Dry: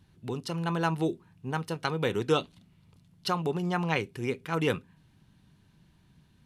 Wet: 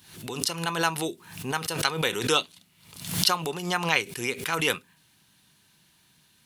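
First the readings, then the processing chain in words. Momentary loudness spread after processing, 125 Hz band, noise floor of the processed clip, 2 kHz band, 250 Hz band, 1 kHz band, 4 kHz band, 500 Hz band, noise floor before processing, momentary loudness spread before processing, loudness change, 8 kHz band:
10 LU, −2.5 dB, −63 dBFS, +7.5 dB, −2.0 dB, +3.5 dB, +11.5 dB, −0.5 dB, −63 dBFS, 9 LU, +4.0 dB, +17.0 dB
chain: spectral tilt +4 dB per octave
background raised ahead of every attack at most 85 dB per second
level +3 dB

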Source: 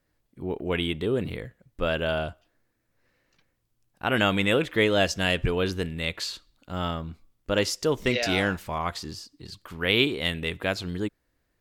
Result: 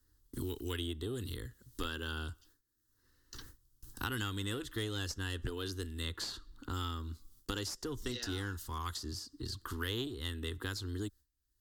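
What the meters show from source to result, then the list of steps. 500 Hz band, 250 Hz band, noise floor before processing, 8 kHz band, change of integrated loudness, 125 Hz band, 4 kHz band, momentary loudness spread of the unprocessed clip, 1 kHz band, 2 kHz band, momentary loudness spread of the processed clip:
−17.0 dB, −12.5 dB, −74 dBFS, −6.5 dB, −13.5 dB, −7.5 dB, −11.0 dB, 16 LU, −13.0 dB, −15.5 dB, 10 LU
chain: noise gate with hold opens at −56 dBFS
guitar amp tone stack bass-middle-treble 6-0-2
phaser with its sweep stopped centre 630 Hz, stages 6
harmonic generator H 3 −17 dB, 4 −24 dB, 5 −25 dB, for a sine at −31.5 dBFS
multiband upward and downward compressor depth 100%
level +13 dB

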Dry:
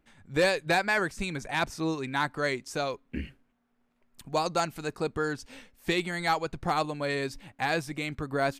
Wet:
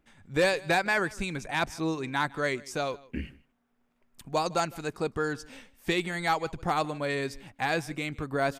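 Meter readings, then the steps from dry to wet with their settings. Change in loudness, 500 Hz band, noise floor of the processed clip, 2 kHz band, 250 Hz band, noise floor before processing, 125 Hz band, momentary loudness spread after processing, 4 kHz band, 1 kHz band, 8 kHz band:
0.0 dB, 0.0 dB, −72 dBFS, 0.0 dB, 0.0 dB, −72 dBFS, 0.0 dB, 10 LU, −1.0 dB, 0.0 dB, 0.0 dB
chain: notch filter 4,200 Hz, Q 20
on a send: single-tap delay 156 ms −22.5 dB

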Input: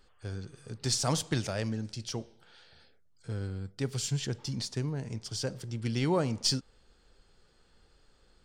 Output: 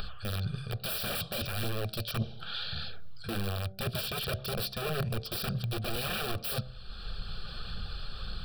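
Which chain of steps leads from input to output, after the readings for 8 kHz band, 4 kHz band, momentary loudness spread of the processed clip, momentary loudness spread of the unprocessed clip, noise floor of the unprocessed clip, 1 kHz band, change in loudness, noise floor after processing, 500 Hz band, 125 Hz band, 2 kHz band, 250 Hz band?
−7.5 dB, +1.0 dB, 9 LU, 13 LU, −65 dBFS, +1.0 dB, −2.0 dB, −44 dBFS, −2.0 dB, −1.0 dB, +5.5 dB, −5.0 dB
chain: low-shelf EQ 320 Hz +6 dB
pitch vibrato 13 Hz 28 cents
graphic EQ with 10 bands 125 Hz +5 dB, 250 Hz −4 dB, 500 Hz −7 dB, 1,000 Hz +9 dB, 4,000 Hz +11 dB, 8,000 Hz −5 dB
in parallel at +2 dB: upward compression, threshold −26 dBFS
on the sum: wrap-around overflow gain 17 dB
reversed playback
downward compressor 6 to 1, threshold −31 dBFS, peak gain reduction 11 dB
reversed playback
notch filter 6,600 Hz, Q 12
hollow resonant body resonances 220/2,400 Hz, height 12 dB, ringing for 35 ms
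phase shifter 1.8 Hz, delay 3.9 ms, feedback 30%
phaser with its sweep stopped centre 1,400 Hz, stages 8
hum removal 63.94 Hz, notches 12

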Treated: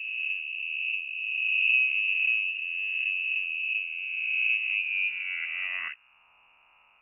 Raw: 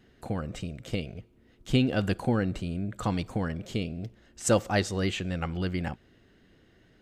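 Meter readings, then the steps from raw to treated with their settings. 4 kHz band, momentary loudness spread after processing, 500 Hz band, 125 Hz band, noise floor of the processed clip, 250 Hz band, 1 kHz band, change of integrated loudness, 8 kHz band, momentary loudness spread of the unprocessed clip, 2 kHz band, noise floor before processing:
+3.0 dB, 9 LU, below −35 dB, below −40 dB, −62 dBFS, below −40 dB, below −15 dB, +4.0 dB, below −40 dB, 14 LU, +14.5 dB, −61 dBFS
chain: peak hold with a rise ahead of every peak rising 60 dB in 2.68 s
low-pass filter sweep 240 Hz → 1,900 Hz, 0:04.63–0:06.28
voice inversion scrambler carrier 2,800 Hz
level −6.5 dB

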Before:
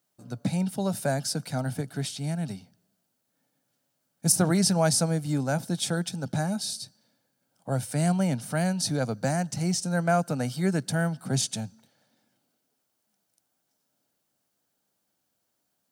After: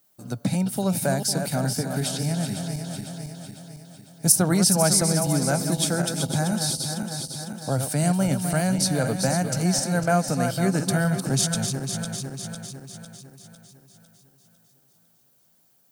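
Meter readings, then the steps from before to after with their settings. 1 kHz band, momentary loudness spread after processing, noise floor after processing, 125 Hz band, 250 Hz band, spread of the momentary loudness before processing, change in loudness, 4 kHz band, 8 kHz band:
+3.5 dB, 17 LU, −62 dBFS, +4.0 dB, +4.0 dB, 10 LU, +4.0 dB, +5.0 dB, +6.5 dB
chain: feedback delay that plays each chunk backwards 251 ms, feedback 68%, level −7.5 dB
high-shelf EQ 11,000 Hz +10.5 dB
in parallel at +1.5 dB: downward compressor, threshold −34 dBFS, peak gain reduction 19.5 dB

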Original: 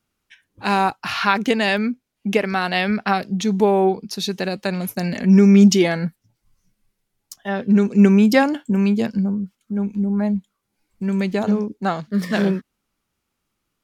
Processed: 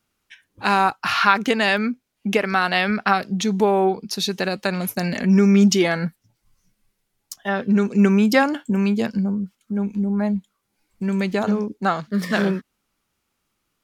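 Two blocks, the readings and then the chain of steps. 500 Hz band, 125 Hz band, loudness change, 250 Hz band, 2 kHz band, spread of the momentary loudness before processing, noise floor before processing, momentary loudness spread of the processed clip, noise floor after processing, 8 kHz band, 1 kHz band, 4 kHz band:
−1.5 dB, −2.5 dB, −1.5 dB, −2.5 dB, +2.0 dB, 13 LU, −77 dBFS, 10 LU, −75 dBFS, +0.5 dB, +1.5 dB, +1.0 dB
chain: low-shelf EQ 410 Hz −3.5 dB
in parallel at −1 dB: downward compressor, threshold −24 dBFS, peak gain reduction 13.5 dB
on the sum: dynamic equaliser 1,300 Hz, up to +5 dB, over −34 dBFS, Q 2.3
level −2.5 dB

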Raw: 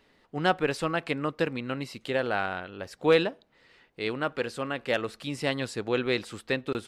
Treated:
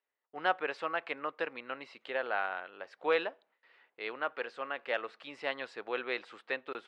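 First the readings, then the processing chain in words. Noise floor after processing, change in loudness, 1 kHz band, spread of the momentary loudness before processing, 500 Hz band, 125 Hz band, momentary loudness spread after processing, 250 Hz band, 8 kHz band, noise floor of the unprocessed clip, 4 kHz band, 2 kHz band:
below −85 dBFS, −7.0 dB, −3.5 dB, 10 LU, −8.0 dB, below −25 dB, 10 LU, −16.0 dB, below −20 dB, −65 dBFS, −9.0 dB, −4.0 dB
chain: noise gate with hold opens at −49 dBFS
band-pass filter 630–2,500 Hz
level −2.5 dB

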